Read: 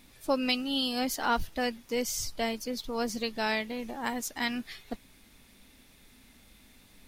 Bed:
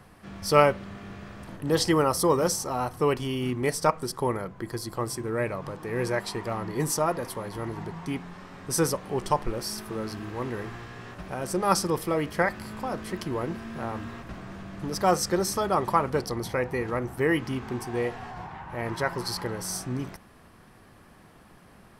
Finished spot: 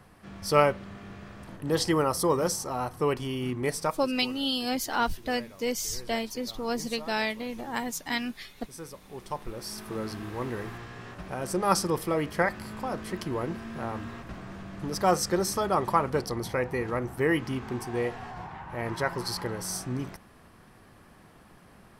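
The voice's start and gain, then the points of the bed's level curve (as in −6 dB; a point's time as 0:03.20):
3.70 s, +1.0 dB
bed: 0:03.79 −2.5 dB
0:04.16 −18 dB
0:08.83 −18 dB
0:09.94 −1 dB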